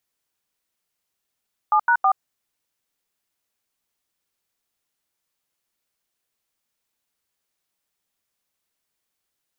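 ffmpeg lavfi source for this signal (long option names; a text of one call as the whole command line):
ffmpeg -f lavfi -i "aevalsrc='0.15*clip(min(mod(t,0.161),0.076-mod(t,0.161))/0.002,0,1)*(eq(floor(t/0.161),0)*(sin(2*PI*852*mod(t,0.161))+sin(2*PI*1209*mod(t,0.161)))+eq(floor(t/0.161),1)*(sin(2*PI*941*mod(t,0.161))+sin(2*PI*1477*mod(t,0.161)))+eq(floor(t/0.161),2)*(sin(2*PI*770*mod(t,0.161))+sin(2*PI*1209*mod(t,0.161))))':duration=0.483:sample_rate=44100" out.wav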